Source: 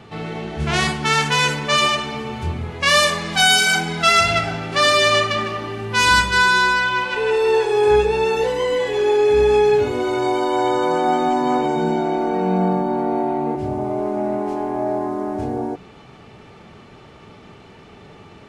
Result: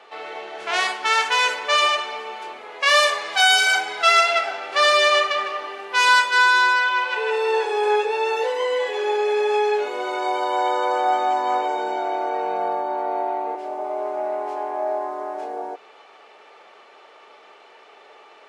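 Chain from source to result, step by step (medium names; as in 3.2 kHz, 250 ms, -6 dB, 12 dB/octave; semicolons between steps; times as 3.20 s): high-pass 490 Hz 24 dB/octave; treble shelf 6 kHz -8.5 dB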